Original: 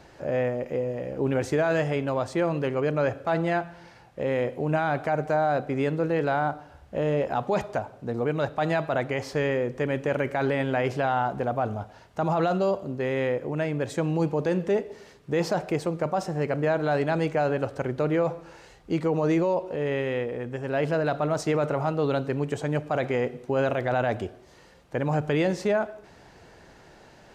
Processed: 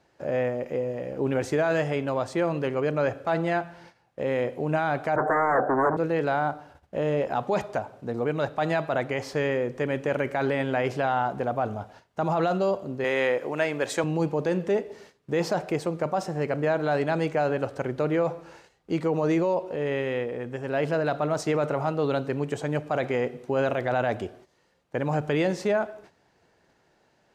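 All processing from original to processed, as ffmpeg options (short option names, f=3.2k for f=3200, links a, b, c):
-filter_complex "[0:a]asettb=1/sr,asplit=3[a][b][c];[a]atrim=end=5.164[d];[b]atrim=start=5.16:end=5.97,asetpts=PTS-STARTPTS,afade=t=in:d=0.004:c=qsin,afade=t=out:st=0.806:d=0.004:c=qsin,aeval=exprs='0.178*sin(PI/2*3.55*val(0)/0.178)':c=same,asuperstop=centerf=3600:order=12:qfactor=0.65,acrossover=split=340 3200:gain=0.2 1 0.1[e][f][g];[e][f][g]amix=inputs=3:normalize=0[h];[c]atrim=start=5.966[i];[d][h]acrossfade=d=0.004:c1=hsin:c2=qsin[j];[j][i]acrossfade=d=0.004:c1=qsin:c2=hsin,asettb=1/sr,asplit=3[k][l][m];[k]atrim=end=13.044[n];[l]atrim=start=13.04:end=14.04,asetpts=PTS-STARTPTS,afade=t=in:d=0.004:c=qsin,afade=t=out:st=0.996:d=0.004:c=qsin,highpass=f=740:p=1,acontrast=83[o];[m]atrim=start=14.036[p];[n][o]acrossfade=d=0.004:c1=hsin:c2=qsin[q];[q][p]acrossfade=d=0.004:c1=qsin:c2=hsin,agate=range=-13dB:threshold=-48dB:ratio=16:detection=peak,lowshelf=f=64:g=-11.5"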